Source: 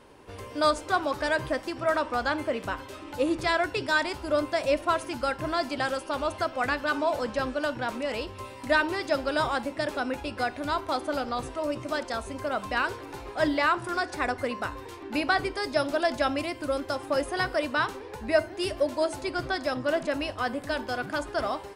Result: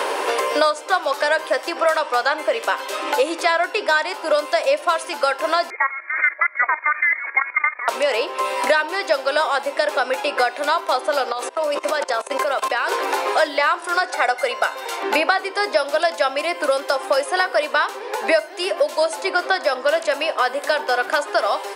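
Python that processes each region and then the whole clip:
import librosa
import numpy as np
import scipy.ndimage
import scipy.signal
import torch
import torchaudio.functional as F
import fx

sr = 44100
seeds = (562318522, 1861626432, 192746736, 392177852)

y = fx.chain(x, sr, fx.highpass(hz=470.0, slope=24),
    fx.level_steps(step_db=14),
    fx.freq_invert(carrier_hz=2700), at=(5.7, 7.88))
y = fx.chain(y, sr, fx.gate_hold(open_db=-27.0, close_db=-30.0, hold_ms=71.0, range_db=-21, attack_ms=1.4, release_ms=100.0),
    fx.peak_eq(hz=91.0, db=-14.5, octaves=0.62),
    fx.level_steps(step_db=20), at=(11.32, 12.92))
y = fx.chain(y, sr, fx.highpass(hz=230.0, slope=12),
    fx.comb(ms=1.4, depth=0.5), at=(14.13, 15.03))
y = scipy.signal.sosfilt(scipy.signal.butter(4, 450.0, 'highpass', fs=sr, output='sos'), y)
y = fx.band_squash(y, sr, depth_pct=100)
y = y * librosa.db_to_amplitude(8.5)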